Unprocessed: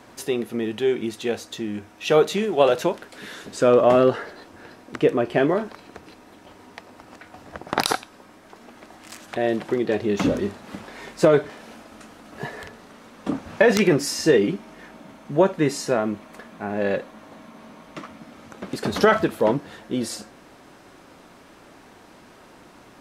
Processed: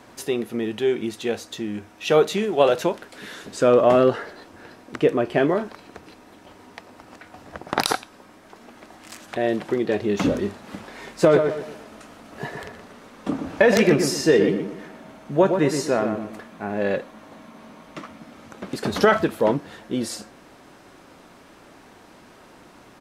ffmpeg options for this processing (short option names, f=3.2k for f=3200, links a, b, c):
-filter_complex "[0:a]asplit=3[a][b][c];[a]afade=t=out:st=11.23:d=0.02[d];[b]asplit=2[e][f];[f]adelay=121,lowpass=f=2.3k:p=1,volume=-6dB,asplit=2[g][h];[h]adelay=121,lowpass=f=2.3k:p=1,volume=0.38,asplit=2[i][j];[j]adelay=121,lowpass=f=2.3k:p=1,volume=0.38,asplit=2[k][l];[l]adelay=121,lowpass=f=2.3k:p=1,volume=0.38,asplit=2[m][n];[n]adelay=121,lowpass=f=2.3k:p=1,volume=0.38[o];[e][g][i][k][m][o]amix=inputs=6:normalize=0,afade=t=in:st=11.23:d=0.02,afade=t=out:st=16.43:d=0.02[p];[c]afade=t=in:st=16.43:d=0.02[q];[d][p][q]amix=inputs=3:normalize=0"